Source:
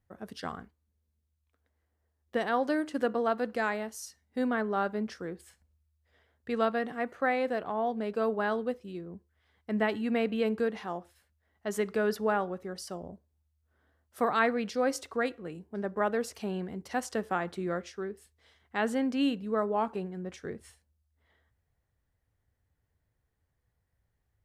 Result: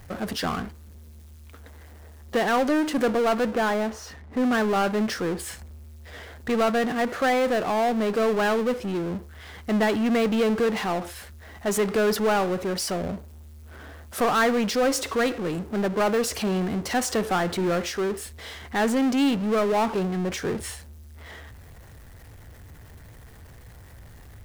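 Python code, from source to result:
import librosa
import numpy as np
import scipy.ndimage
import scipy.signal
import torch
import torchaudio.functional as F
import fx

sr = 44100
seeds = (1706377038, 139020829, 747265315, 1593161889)

y = fx.lowpass(x, sr, hz=1500.0, slope=12, at=(3.48, 4.52))
y = fx.power_curve(y, sr, exponent=0.5)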